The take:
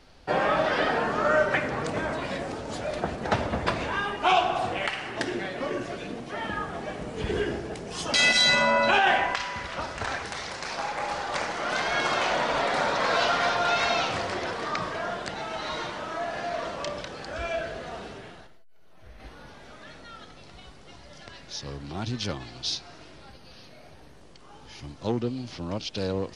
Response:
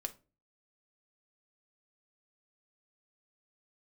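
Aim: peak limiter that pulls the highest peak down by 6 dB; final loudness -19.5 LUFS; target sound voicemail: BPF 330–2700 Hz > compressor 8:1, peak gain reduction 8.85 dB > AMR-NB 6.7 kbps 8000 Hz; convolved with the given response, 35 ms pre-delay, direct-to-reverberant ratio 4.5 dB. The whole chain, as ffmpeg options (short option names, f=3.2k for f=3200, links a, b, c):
-filter_complex "[0:a]alimiter=limit=-16dB:level=0:latency=1,asplit=2[a][b];[1:a]atrim=start_sample=2205,adelay=35[c];[b][c]afir=irnorm=-1:irlink=0,volume=-3dB[d];[a][d]amix=inputs=2:normalize=0,highpass=330,lowpass=2.7k,acompressor=threshold=-28dB:ratio=8,volume=16.5dB" -ar 8000 -c:a libopencore_amrnb -b:a 6700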